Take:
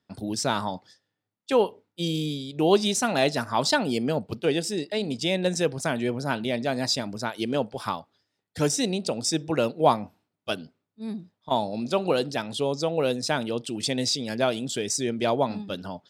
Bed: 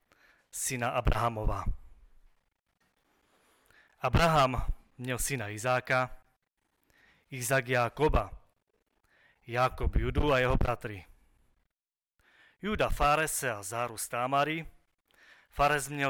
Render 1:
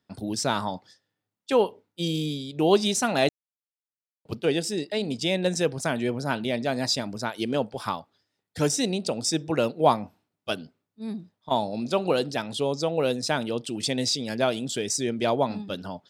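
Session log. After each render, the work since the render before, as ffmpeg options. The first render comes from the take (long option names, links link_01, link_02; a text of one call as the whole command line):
ffmpeg -i in.wav -filter_complex "[0:a]asplit=3[link_01][link_02][link_03];[link_01]atrim=end=3.29,asetpts=PTS-STARTPTS,afade=type=out:start_time=3.286:duration=0.004:curve=hsin[link_04];[link_02]atrim=start=3.29:end=4.25,asetpts=PTS-STARTPTS,volume=0[link_05];[link_03]atrim=start=4.25,asetpts=PTS-STARTPTS,afade=type=in:duration=0.004:curve=hsin[link_06];[link_04][link_05][link_06]concat=n=3:v=0:a=1" out.wav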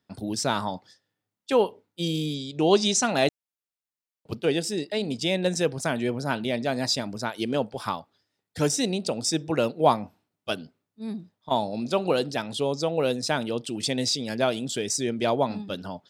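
ffmpeg -i in.wav -filter_complex "[0:a]asettb=1/sr,asplit=3[link_01][link_02][link_03];[link_01]atrim=end=2.344[link_04];[link_02]atrim=start=2.34:end=3.1,asetpts=PTS-STARTPTS,afade=type=in:duration=0.004:curve=qsin,afade=type=out:start_time=0.756:duration=0.004:curve=qsin,lowpass=frequency=6700:width_type=q:width=1.8[link_05];[link_03]atrim=start=3.096[link_06];[link_04][link_05]acrossfade=duration=0.004:curve1=hsin:curve2=qsin[link_07];[link_07][link_06]acrossfade=duration=0.004:curve1=qsin:curve2=hsin" out.wav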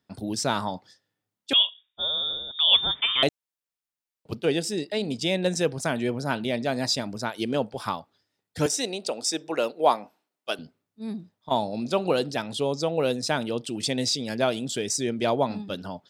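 ffmpeg -i in.wav -filter_complex "[0:a]asettb=1/sr,asplit=3[link_01][link_02][link_03];[link_01]atrim=end=1.534[link_04];[link_02]atrim=start=1.53:end=3.23,asetpts=PTS-STARTPTS,afade=type=in:duration=0.004:curve=qsin,afade=type=out:start_time=1.696:duration=0.004:curve=qsin,lowpass=frequency=3200:width_type=q:width=0.5098,lowpass=frequency=3200:width_type=q:width=0.6013,lowpass=frequency=3200:width_type=q:width=0.9,lowpass=frequency=3200:width_type=q:width=2.563,afreqshift=-3800[link_05];[link_03]atrim=start=3.226[link_06];[link_04][link_05]acrossfade=duration=0.004:curve1=hsin:curve2=qsin[link_07];[link_07][link_06]acrossfade=duration=0.004:curve1=qsin:curve2=hsin,asettb=1/sr,asplit=3[link_08][link_09][link_10];[link_08]atrim=end=8.664[link_11];[link_09]atrim=start=8.66:end=10.59,asetpts=PTS-STARTPTS,afade=type=in:duration=0.004:curve=qsin,afade=type=out:start_time=1.926:duration=0.004:curve=qsin,highpass=380[link_12];[link_10]atrim=start=10.586[link_13];[link_11][link_12]acrossfade=duration=0.004:curve1=hsin:curve2=qsin[link_14];[link_14][link_13]acrossfade=duration=0.004:curve1=qsin:curve2=hsin" out.wav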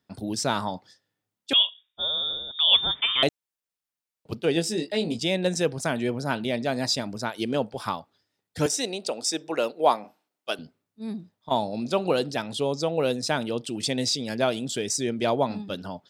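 ffmpeg -i in.wav -filter_complex "[0:a]asettb=1/sr,asplit=3[link_01][link_02][link_03];[link_01]atrim=end=4.544[link_04];[link_02]atrim=start=4.54:end=5.19,asetpts=PTS-STARTPTS,afade=type=in:duration=0.004:curve=qsin,afade=type=out:start_time=0.646:duration=0.004:curve=qsin,asplit=2[link_05][link_06];[link_06]adelay=18,volume=-5dB[link_07];[link_05][link_07]amix=inputs=2:normalize=0,atrim=end_sample=28665[link_08];[link_03]atrim=start=5.186[link_09];[link_04][link_08]acrossfade=duration=0.004:curve1=hsin:curve2=qsin[link_10];[link_10][link_09]acrossfade=duration=0.004:curve1=qsin:curve2=hsin,asettb=1/sr,asplit=3[link_11][link_12][link_13];[link_11]atrim=end=10.004[link_14];[link_12]atrim=start=10:end=10.51,asetpts=PTS-STARTPTS,afade=type=in:duration=0.004:curve=qsin,afade=type=out:start_time=0.506:duration=0.004:curve=qsin,asplit=2[link_15][link_16];[link_16]adelay=43,volume=-9.5dB[link_17];[link_15][link_17]amix=inputs=2:normalize=0,atrim=end_sample=22491[link_18];[link_13]atrim=start=10.506[link_19];[link_14][link_18]acrossfade=duration=0.004:curve1=hsin:curve2=qsin[link_20];[link_20][link_19]acrossfade=duration=0.004:curve1=qsin:curve2=hsin" out.wav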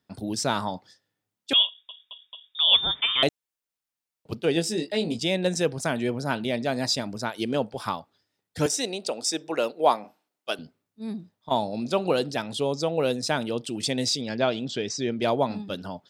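ffmpeg -i in.wav -filter_complex "[0:a]asettb=1/sr,asplit=3[link_01][link_02][link_03];[link_01]atrim=end=14.214[link_04];[link_02]atrim=start=14.21:end=15.22,asetpts=PTS-STARTPTS,afade=type=in:duration=0.004:curve=qsin,afade=type=out:start_time=1.006:duration=0.004:curve=qsin,lowpass=frequency=5500:width=0.5412,lowpass=frequency=5500:width=1.3066[link_05];[link_03]atrim=start=15.216[link_06];[link_04][link_05]acrossfade=duration=0.004:curve1=hsin:curve2=qsin[link_07];[link_07][link_06]acrossfade=duration=0.004:curve1=qsin:curve2=hsin,asplit=5[link_08][link_09][link_10][link_11][link_12];[link_08]atrim=end=1.892[link_13];[link_09]atrim=start=1.668:end=1.892[link_14];[link_10]atrim=start=1.668:end=1.892[link_15];[link_11]atrim=start=1.668:end=1.892[link_16];[link_12]atrim=start=2.548[link_17];[link_13][link_14]acrossfade=duration=0.004:curve1=hsin:curve2=hsin[link_18];[link_18][link_15]acrossfade=duration=0.004:curve1=hsin:curve2=hsin[link_19];[link_19][link_16]acrossfade=duration=0.004:curve1=hsin:curve2=hsin[link_20];[link_20][link_17]acrossfade=duration=0.004:curve1=hsin:curve2=hsin" out.wav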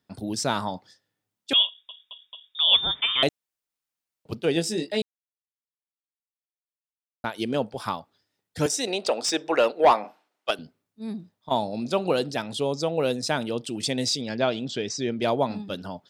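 ffmpeg -i in.wav -filter_complex "[0:a]asettb=1/sr,asplit=3[link_01][link_02][link_03];[link_01]atrim=end=8.874[link_04];[link_02]atrim=start=8.87:end=10.51,asetpts=PTS-STARTPTS,afade=type=in:duration=0.004:curve=qsin,afade=type=out:start_time=1.636:duration=0.004:curve=qsin,asplit=2[link_05][link_06];[link_06]highpass=frequency=720:poles=1,volume=16dB,asoftclip=type=tanh:threshold=-7dB[link_07];[link_05][link_07]amix=inputs=2:normalize=0,lowpass=frequency=2300:poles=1,volume=-6dB[link_08];[link_03]atrim=start=10.506[link_09];[link_04][link_08]acrossfade=duration=0.004:curve1=hsin:curve2=qsin[link_10];[link_10][link_09]acrossfade=duration=0.004:curve1=qsin:curve2=hsin,asplit=3[link_11][link_12][link_13];[link_11]atrim=end=5.02,asetpts=PTS-STARTPTS,afade=type=out:start_time=5.016:duration=0.004:curve=hsin[link_14];[link_12]atrim=start=5.02:end=7.24,asetpts=PTS-STARTPTS,volume=0[link_15];[link_13]atrim=start=7.24,asetpts=PTS-STARTPTS,afade=type=in:duration=0.004:curve=hsin[link_16];[link_14][link_15][link_16]concat=n=3:v=0:a=1" out.wav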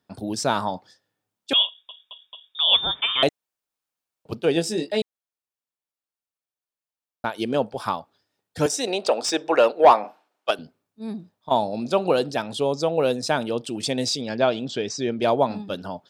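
ffmpeg -i in.wav -af "equalizer=frequency=740:width=0.56:gain=4.5,bandreject=frequency=2000:width=18" out.wav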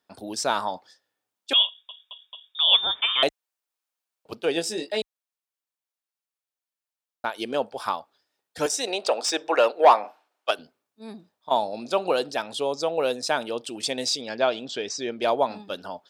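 ffmpeg -i in.wav -af "highpass=42,equalizer=frequency=120:width=0.54:gain=-14.5" out.wav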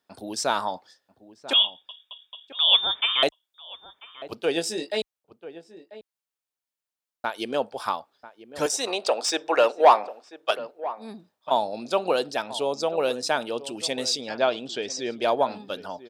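ffmpeg -i in.wav -filter_complex "[0:a]asplit=2[link_01][link_02];[link_02]adelay=991.3,volume=-15dB,highshelf=frequency=4000:gain=-22.3[link_03];[link_01][link_03]amix=inputs=2:normalize=0" out.wav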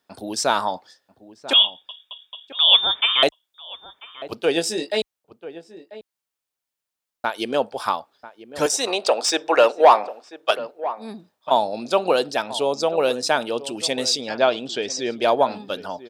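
ffmpeg -i in.wav -af "volume=4.5dB,alimiter=limit=-3dB:level=0:latency=1" out.wav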